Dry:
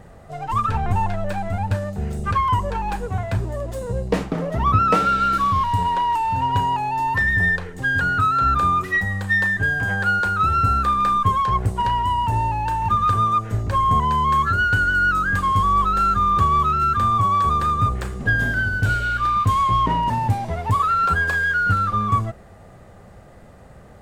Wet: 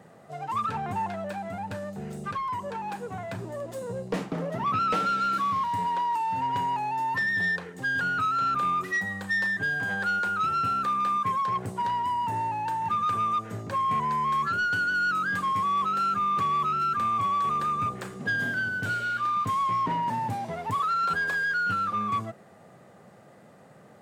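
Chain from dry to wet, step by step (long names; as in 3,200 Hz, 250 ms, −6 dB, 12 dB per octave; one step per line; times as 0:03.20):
high-pass filter 140 Hz 24 dB per octave
soft clipping −16 dBFS, distortion −18 dB
0:01.26–0:03.39: downward compressor 2 to 1, threshold −27 dBFS, peak gain reduction 4.5 dB
level −5 dB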